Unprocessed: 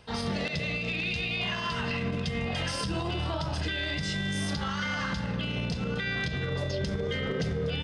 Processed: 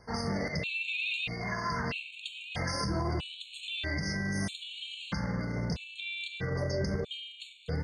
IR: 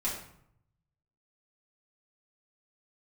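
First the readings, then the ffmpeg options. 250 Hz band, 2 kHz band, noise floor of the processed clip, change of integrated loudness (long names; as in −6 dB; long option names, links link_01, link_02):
−3.5 dB, −3.5 dB, −50 dBFS, −3.5 dB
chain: -filter_complex "[0:a]asplit=2[link_01][link_02];[1:a]atrim=start_sample=2205,afade=type=out:start_time=0.32:duration=0.01,atrim=end_sample=14553,highshelf=frequency=8700:gain=8.5[link_03];[link_02][link_03]afir=irnorm=-1:irlink=0,volume=-15.5dB[link_04];[link_01][link_04]amix=inputs=2:normalize=0,afftfilt=real='re*gt(sin(2*PI*0.78*pts/sr)*(1-2*mod(floor(b*sr/1024/2200),2)),0)':imag='im*gt(sin(2*PI*0.78*pts/sr)*(1-2*mod(floor(b*sr/1024/2200),2)),0)':win_size=1024:overlap=0.75,volume=-1.5dB"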